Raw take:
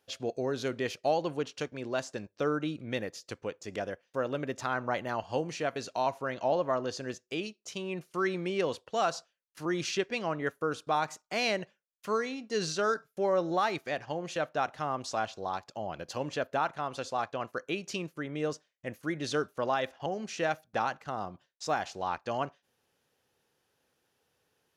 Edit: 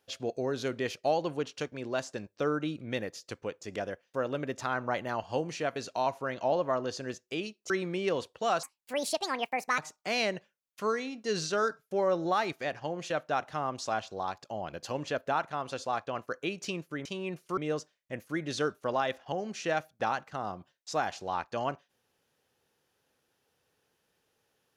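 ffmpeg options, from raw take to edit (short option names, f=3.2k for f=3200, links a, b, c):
-filter_complex "[0:a]asplit=6[a][b][c][d][e][f];[a]atrim=end=7.702[g];[b]atrim=start=8.218:end=9.154[h];[c]atrim=start=9.15:end=11.04,asetpts=PTS-STARTPTS,asetrate=72324,aresample=44100[i];[d]atrim=start=11.036:end=18.312[j];[e]atrim=start=7.698:end=8.222[k];[f]atrim=start=18.308[l];[g][h]acrossfade=d=0.004:c1=hsin:c2=hsin[m];[m][i]acrossfade=d=0.004:c1=hsin:c2=hsin[n];[n][j]acrossfade=d=0.004:c1=hsin:c2=hsin[o];[o][k]acrossfade=d=0.004:c1=hsin:c2=hsin[p];[p][l]acrossfade=d=0.004:c1=hsin:c2=hsin"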